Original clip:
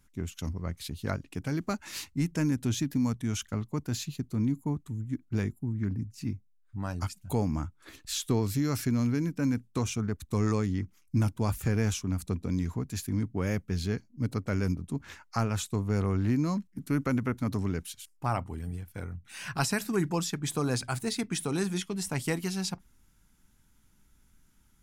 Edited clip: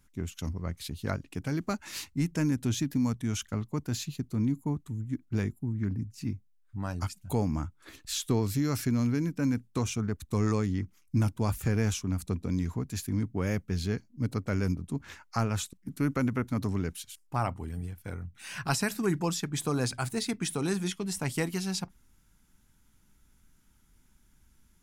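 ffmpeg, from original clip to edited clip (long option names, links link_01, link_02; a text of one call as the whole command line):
ffmpeg -i in.wav -filter_complex "[0:a]asplit=2[link_01][link_02];[link_01]atrim=end=15.732[link_03];[link_02]atrim=start=16.628[link_04];[link_03][link_04]acrossfade=duration=0.004:curve1=hsin:curve2=hsin" out.wav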